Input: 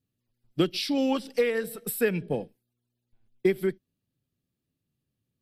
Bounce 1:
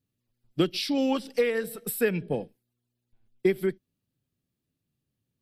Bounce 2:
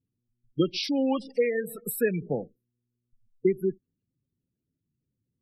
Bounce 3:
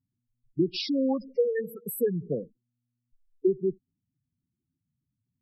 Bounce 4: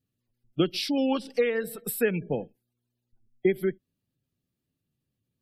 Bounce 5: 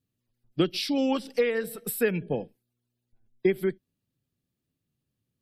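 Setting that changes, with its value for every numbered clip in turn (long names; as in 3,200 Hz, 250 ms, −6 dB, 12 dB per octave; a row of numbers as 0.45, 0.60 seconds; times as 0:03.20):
gate on every frequency bin, under each frame's peak: −60, −20, −10, −35, −45 decibels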